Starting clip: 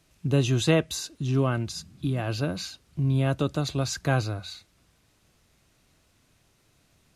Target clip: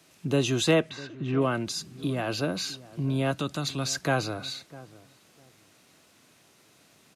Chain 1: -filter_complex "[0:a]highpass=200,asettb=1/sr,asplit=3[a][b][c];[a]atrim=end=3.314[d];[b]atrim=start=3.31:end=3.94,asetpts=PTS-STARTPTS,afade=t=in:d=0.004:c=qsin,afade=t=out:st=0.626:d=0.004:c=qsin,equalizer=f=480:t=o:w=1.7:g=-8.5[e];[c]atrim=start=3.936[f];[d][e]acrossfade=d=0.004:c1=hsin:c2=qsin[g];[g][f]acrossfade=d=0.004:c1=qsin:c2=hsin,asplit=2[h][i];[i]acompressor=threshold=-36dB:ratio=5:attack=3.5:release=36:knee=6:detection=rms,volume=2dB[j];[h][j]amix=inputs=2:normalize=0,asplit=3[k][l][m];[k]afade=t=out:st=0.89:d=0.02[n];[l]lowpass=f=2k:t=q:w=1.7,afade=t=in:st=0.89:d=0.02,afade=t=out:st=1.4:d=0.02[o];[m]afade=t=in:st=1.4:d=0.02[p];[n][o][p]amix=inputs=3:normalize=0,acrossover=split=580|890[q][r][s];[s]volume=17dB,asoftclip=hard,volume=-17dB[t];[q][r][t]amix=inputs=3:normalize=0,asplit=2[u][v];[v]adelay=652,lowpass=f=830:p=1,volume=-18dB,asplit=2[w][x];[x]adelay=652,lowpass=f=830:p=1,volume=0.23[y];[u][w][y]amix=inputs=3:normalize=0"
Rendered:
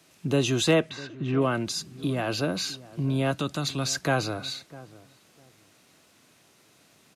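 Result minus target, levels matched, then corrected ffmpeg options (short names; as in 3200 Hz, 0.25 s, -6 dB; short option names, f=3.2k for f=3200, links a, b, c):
compressor: peak gain reduction -5 dB
-filter_complex "[0:a]highpass=200,asettb=1/sr,asplit=3[a][b][c];[a]atrim=end=3.314[d];[b]atrim=start=3.31:end=3.94,asetpts=PTS-STARTPTS,afade=t=in:d=0.004:c=qsin,afade=t=out:st=0.626:d=0.004:c=qsin,equalizer=f=480:t=o:w=1.7:g=-8.5[e];[c]atrim=start=3.936[f];[d][e]acrossfade=d=0.004:c1=hsin:c2=qsin[g];[g][f]acrossfade=d=0.004:c1=qsin:c2=hsin,asplit=2[h][i];[i]acompressor=threshold=-42.5dB:ratio=5:attack=3.5:release=36:knee=6:detection=rms,volume=2dB[j];[h][j]amix=inputs=2:normalize=0,asplit=3[k][l][m];[k]afade=t=out:st=0.89:d=0.02[n];[l]lowpass=f=2k:t=q:w=1.7,afade=t=in:st=0.89:d=0.02,afade=t=out:st=1.4:d=0.02[o];[m]afade=t=in:st=1.4:d=0.02[p];[n][o][p]amix=inputs=3:normalize=0,acrossover=split=580|890[q][r][s];[s]volume=17dB,asoftclip=hard,volume=-17dB[t];[q][r][t]amix=inputs=3:normalize=0,asplit=2[u][v];[v]adelay=652,lowpass=f=830:p=1,volume=-18dB,asplit=2[w][x];[x]adelay=652,lowpass=f=830:p=1,volume=0.23[y];[u][w][y]amix=inputs=3:normalize=0"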